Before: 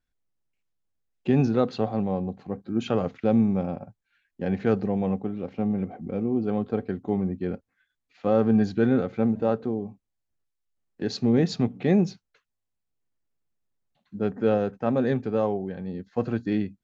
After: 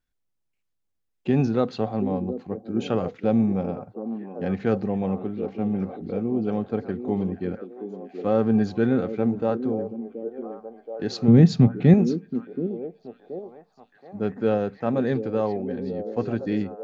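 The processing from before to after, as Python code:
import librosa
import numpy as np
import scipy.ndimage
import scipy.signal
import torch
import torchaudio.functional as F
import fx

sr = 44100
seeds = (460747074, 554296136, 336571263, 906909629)

y = fx.peak_eq(x, sr, hz=140.0, db=12.5, octaves=1.6, at=(11.28, 11.94))
y = fx.echo_stepped(y, sr, ms=726, hz=330.0, octaves=0.7, feedback_pct=70, wet_db=-6.5)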